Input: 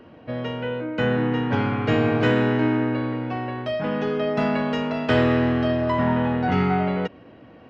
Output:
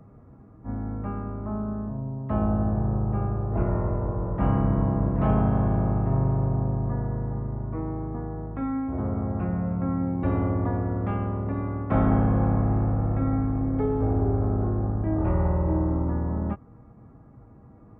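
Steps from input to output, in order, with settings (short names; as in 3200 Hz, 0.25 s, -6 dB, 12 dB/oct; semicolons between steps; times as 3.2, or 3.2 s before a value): speed mistake 78 rpm record played at 33 rpm; gain -2.5 dB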